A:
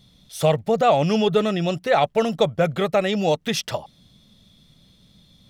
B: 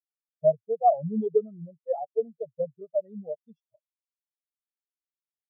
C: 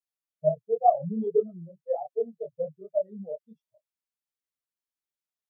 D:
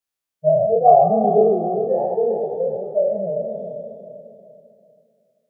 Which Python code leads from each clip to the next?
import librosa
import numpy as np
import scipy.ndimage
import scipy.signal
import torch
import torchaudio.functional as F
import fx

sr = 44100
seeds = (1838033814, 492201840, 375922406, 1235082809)

y1 = fx.spectral_expand(x, sr, expansion=4.0)
y1 = y1 * librosa.db_to_amplitude(-5.5)
y2 = fx.detune_double(y1, sr, cents=47)
y2 = y2 * librosa.db_to_amplitude(3.0)
y3 = fx.spec_trails(y2, sr, decay_s=2.2)
y3 = fx.echo_feedback(y3, sr, ms=395, feedback_pct=40, wet_db=-10)
y3 = y3 * librosa.db_to_amplitude(4.5)